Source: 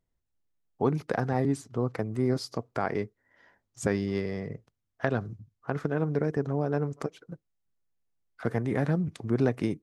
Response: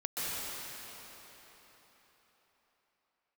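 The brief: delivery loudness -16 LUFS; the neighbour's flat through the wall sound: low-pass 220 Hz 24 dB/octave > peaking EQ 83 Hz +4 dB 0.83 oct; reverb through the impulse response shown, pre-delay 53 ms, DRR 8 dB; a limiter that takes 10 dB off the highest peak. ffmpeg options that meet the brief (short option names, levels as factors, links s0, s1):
-filter_complex "[0:a]alimiter=limit=0.126:level=0:latency=1,asplit=2[s0][s1];[1:a]atrim=start_sample=2205,adelay=53[s2];[s1][s2]afir=irnorm=-1:irlink=0,volume=0.178[s3];[s0][s3]amix=inputs=2:normalize=0,lowpass=f=220:w=0.5412,lowpass=f=220:w=1.3066,equalizer=f=83:t=o:w=0.83:g=4,volume=8.91"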